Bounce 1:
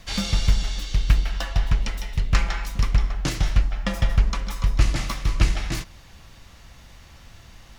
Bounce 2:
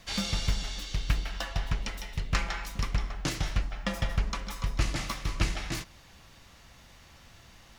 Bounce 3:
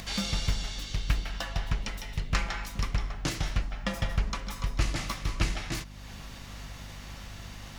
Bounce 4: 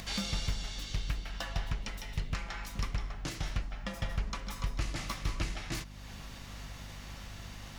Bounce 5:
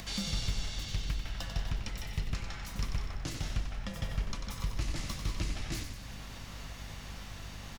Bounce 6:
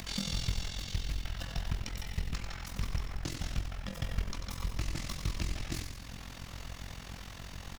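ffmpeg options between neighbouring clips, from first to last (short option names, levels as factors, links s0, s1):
-af "lowshelf=f=100:g=-8,volume=0.631"
-af "acompressor=mode=upward:threshold=0.0178:ratio=2.5,aeval=exprs='val(0)+0.00631*(sin(2*PI*50*n/s)+sin(2*PI*2*50*n/s)/2+sin(2*PI*3*50*n/s)/3+sin(2*PI*4*50*n/s)/4+sin(2*PI*5*50*n/s)/5)':c=same"
-af "alimiter=limit=0.106:level=0:latency=1:release=407,volume=0.75"
-filter_complex "[0:a]acrossover=split=460|3000[s0][s1][s2];[s1]acompressor=threshold=0.00447:ratio=6[s3];[s0][s3][s2]amix=inputs=3:normalize=0,asplit=2[s4][s5];[s5]asplit=8[s6][s7][s8][s9][s10][s11][s12][s13];[s6]adelay=93,afreqshift=-42,volume=0.447[s14];[s7]adelay=186,afreqshift=-84,volume=0.269[s15];[s8]adelay=279,afreqshift=-126,volume=0.16[s16];[s9]adelay=372,afreqshift=-168,volume=0.0966[s17];[s10]adelay=465,afreqshift=-210,volume=0.0582[s18];[s11]adelay=558,afreqshift=-252,volume=0.0347[s19];[s12]adelay=651,afreqshift=-294,volume=0.0209[s20];[s13]adelay=744,afreqshift=-336,volume=0.0124[s21];[s14][s15][s16][s17][s18][s19][s20][s21]amix=inputs=8:normalize=0[s22];[s4][s22]amix=inputs=2:normalize=0"
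-filter_complex "[0:a]asplit=2[s0][s1];[s1]acrusher=bits=3:mode=log:mix=0:aa=0.000001,volume=0.398[s2];[s0][s2]amix=inputs=2:normalize=0,tremolo=f=43:d=0.788"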